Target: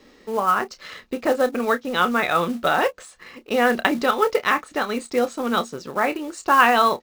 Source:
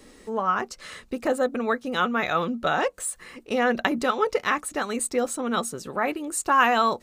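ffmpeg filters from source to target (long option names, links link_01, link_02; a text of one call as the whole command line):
ffmpeg -i in.wav -filter_complex "[0:a]lowpass=frequency=5700:width=0.5412,lowpass=frequency=5700:width=1.3066,lowshelf=frequency=120:gain=-8,asplit=2[link_01][link_02];[link_02]aeval=exprs='sgn(val(0))*max(abs(val(0))-0.00596,0)':channel_layout=same,volume=-4dB[link_03];[link_01][link_03]amix=inputs=2:normalize=0,acrusher=bits=5:mode=log:mix=0:aa=0.000001,asplit=2[link_04][link_05];[link_05]adelay=29,volume=-12dB[link_06];[link_04][link_06]amix=inputs=2:normalize=0" out.wav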